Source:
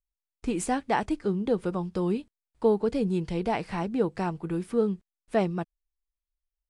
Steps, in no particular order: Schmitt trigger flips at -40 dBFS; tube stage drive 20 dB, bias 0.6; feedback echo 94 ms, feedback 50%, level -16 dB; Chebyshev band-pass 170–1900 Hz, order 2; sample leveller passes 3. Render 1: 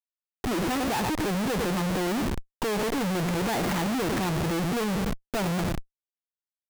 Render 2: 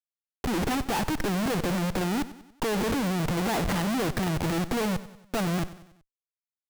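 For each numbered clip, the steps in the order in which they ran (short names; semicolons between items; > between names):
Chebyshev band-pass > tube stage > sample leveller > feedback echo > Schmitt trigger; tube stage > Chebyshev band-pass > sample leveller > Schmitt trigger > feedback echo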